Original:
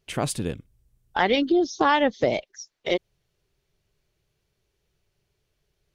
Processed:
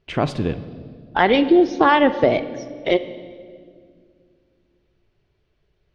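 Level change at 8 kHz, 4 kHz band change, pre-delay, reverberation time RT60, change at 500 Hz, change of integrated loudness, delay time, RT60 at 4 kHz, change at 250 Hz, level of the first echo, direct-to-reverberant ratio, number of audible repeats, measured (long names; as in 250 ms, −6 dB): below −10 dB, +2.0 dB, 3 ms, 2.0 s, +6.5 dB, +5.5 dB, no echo audible, 1.6 s, +7.0 dB, no echo audible, 11.0 dB, no echo audible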